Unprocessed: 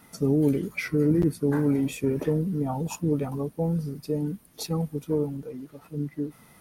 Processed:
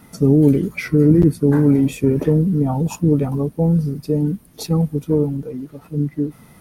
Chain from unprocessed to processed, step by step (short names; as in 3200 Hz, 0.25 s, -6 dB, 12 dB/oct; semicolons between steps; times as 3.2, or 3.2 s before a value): low shelf 400 Hz +8 dB; gain +4 dB